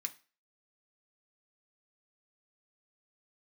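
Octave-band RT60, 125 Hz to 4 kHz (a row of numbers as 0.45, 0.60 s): 0.30, 0.35, 0.35, 0.35, 0.35, 0.35 s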